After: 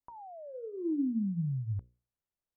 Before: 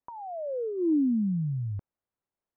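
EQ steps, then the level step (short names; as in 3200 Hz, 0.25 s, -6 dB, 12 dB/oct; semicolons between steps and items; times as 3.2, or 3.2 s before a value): low shelf 120 Hz +11 dB; notches 60/120/180/240/300/360/420/480/540 Hz; dynamic EQ 590 Hz, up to -5 dB, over -43 dBFS, Q 1.6; -7.0 dB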